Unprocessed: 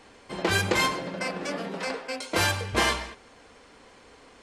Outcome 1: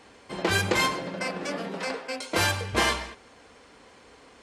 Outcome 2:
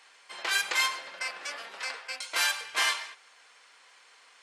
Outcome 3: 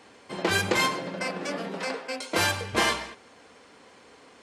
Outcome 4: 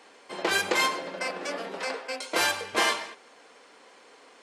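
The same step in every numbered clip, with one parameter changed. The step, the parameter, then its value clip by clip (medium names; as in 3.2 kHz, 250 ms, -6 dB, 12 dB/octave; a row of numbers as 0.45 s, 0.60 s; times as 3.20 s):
high-pass, cutoff frequency: 42 Hz, 1.3 kHz, 110 Hz, 360 Hz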